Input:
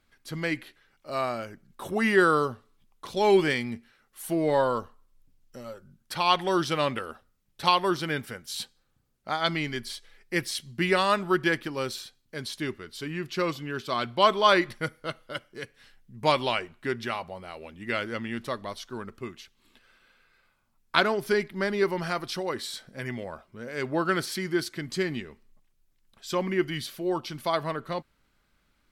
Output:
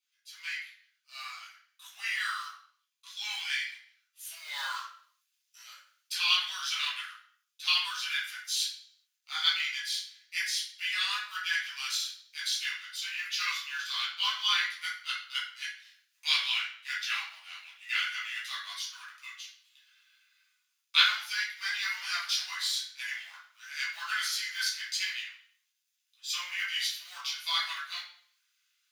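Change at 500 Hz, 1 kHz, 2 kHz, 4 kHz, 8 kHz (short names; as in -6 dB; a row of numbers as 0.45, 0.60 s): under -40 dB, -12.5 dB, -1.0 dB, +4.5 dB, +4.5 dB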